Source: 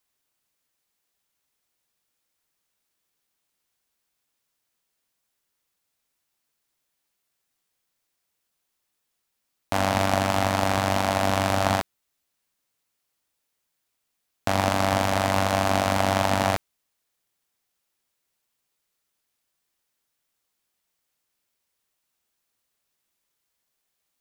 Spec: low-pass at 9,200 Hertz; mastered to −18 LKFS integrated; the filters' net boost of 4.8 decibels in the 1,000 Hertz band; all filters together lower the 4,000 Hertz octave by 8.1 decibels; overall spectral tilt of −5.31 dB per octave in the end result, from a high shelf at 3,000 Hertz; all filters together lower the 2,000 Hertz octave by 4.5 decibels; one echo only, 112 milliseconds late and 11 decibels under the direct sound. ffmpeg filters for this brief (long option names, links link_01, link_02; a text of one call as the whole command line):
ffmpeg -i in.wav -af "lowpass=9200,equalizer=frequency=1000:width_type=o:gain=8.5,equalizer=frequency=2000:width_type=o:gain=-7,highshelf=frequency=3000:gain=-4.5,equalizer=frequency=4000:width_type=o:gain=-5,aecho=1:1:112:0.282,volume=3dB" out.wav